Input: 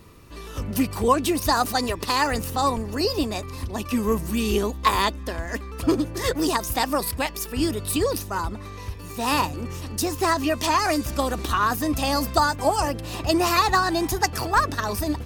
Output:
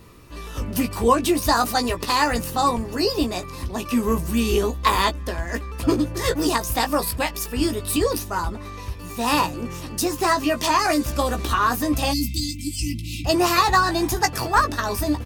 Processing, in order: spectral delete 12.12–13.25, 330–2000 Hz; doubler 17 ms -6.5 dB; gain +1 dB

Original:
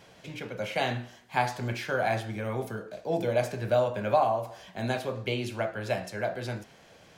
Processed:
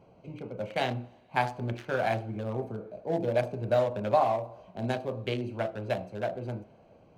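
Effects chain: Wiener smoothing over 25 samples; two-slope reverb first 0.42 s, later 4.3 s, from -18 dB, DRR 19 dB

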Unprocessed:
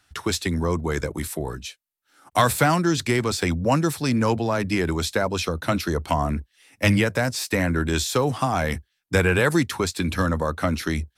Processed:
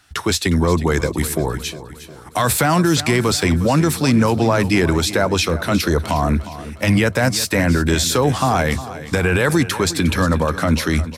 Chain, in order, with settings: limiter -15.5 dBFS, peak gain reduction 11.5 dB; feedback echo 0.358 s, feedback 50%, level -14.5 dB; gain +8.5 dB

